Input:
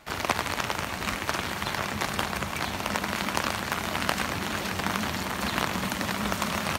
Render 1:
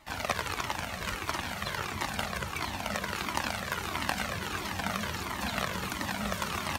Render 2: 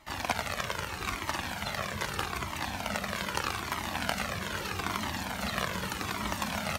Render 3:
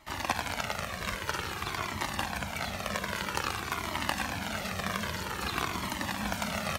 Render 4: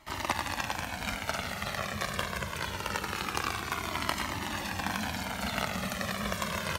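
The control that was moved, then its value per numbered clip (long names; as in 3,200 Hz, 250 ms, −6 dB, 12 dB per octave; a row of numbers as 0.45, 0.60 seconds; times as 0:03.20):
flanger whose copies keep moving one way, speed: 1.5, 0.8, 0.51, 0.24 Hertz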